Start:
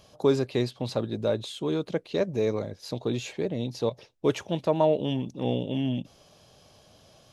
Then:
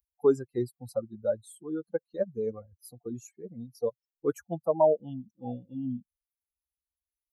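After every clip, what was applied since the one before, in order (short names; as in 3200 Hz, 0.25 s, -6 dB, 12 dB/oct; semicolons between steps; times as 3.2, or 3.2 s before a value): per-bin expansion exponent 3; EQ curve 140 Hz 0 dB, 520 Hz +9 dB, 1500 Hz +4 dB, 2600 Hz -19 dB, 4200 Hz -12 dB, 9800 Hz +14 dB; gain -4 dB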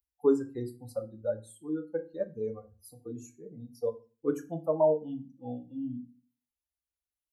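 FDN reverb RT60 0.33 s, low-frequency decay 1.5×, high-frequency decay 0.85×, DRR 4.5 dB; gain -4 dB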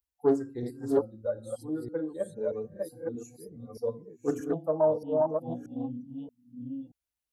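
reverse delay 0.629 s, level -2 dB; Doppler distortion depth 0.19 ms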